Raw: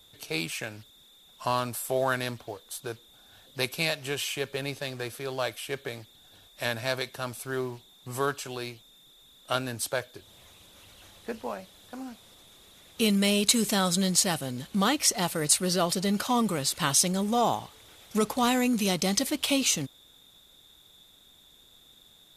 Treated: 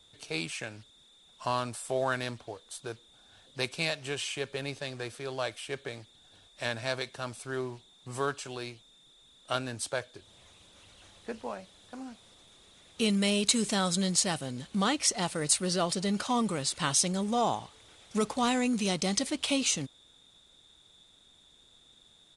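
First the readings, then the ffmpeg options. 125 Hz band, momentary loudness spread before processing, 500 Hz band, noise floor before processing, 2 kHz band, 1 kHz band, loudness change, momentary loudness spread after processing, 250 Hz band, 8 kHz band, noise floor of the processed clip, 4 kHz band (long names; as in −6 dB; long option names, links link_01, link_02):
−3.0 dB, 17 LU, −3.0 dB, −57 dBFS, −3.0 dB, −3.0 dB, −3.0 dB, 17 LU, −3.0 dB, −3.5 dB, −61 dBFS, −3.0 dB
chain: -af "aresample=22050,aresample=44100,volume=-3dB"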